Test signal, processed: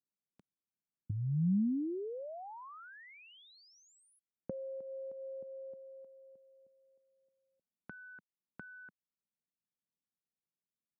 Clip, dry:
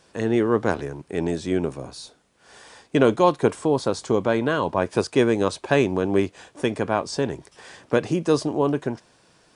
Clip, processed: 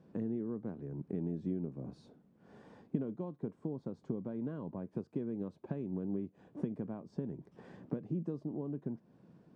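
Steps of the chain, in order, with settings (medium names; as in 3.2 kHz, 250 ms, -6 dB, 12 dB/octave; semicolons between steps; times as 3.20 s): compression 8:1, threshold -35 dBFS; band-pass filter 190 Hz, Q 2; trim +7 dB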